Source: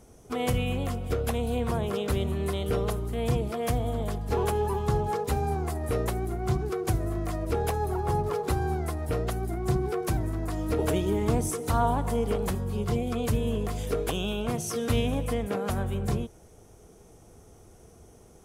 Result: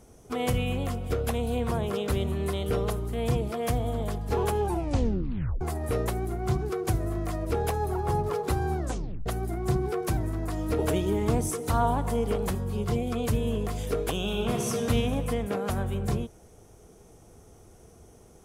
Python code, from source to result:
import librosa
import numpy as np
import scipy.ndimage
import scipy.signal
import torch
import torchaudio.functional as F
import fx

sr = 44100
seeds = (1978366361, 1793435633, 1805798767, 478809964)

y = fx.reverb_throw(x, sr, start_s=14.16, length_s=0.53, rt60_s=2.9, drr_db=1.5)
y = fx.edit(y, sr, fx.tape_stop(start_s=4.61, length_s=1.0),
    fx.tape_stop(start_s=8.78, length_s=0.48), tone=tone)